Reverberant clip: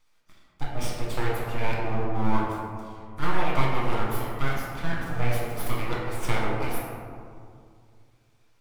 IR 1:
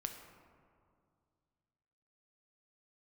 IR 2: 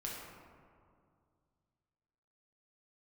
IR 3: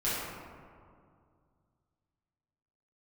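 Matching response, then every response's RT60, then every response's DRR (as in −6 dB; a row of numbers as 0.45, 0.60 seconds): 2; 2.2, 2.2, 2.2 seconds; 4.5, −4.5, −11.5 decibels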